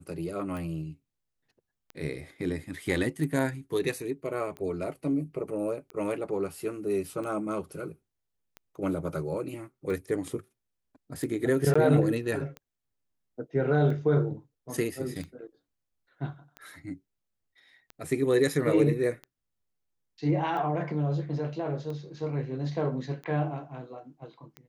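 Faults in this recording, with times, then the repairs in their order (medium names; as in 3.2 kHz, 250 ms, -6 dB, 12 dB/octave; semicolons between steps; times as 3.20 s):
tick 45 rpm
11.74–11.76 s: dropout 15 ms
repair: de-click; interpolate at 11.74 s, 15 ms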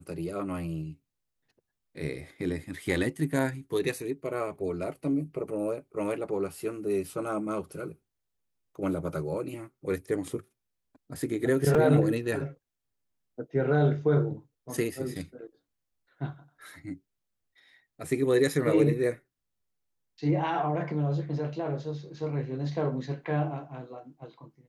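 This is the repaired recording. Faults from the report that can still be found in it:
nothing left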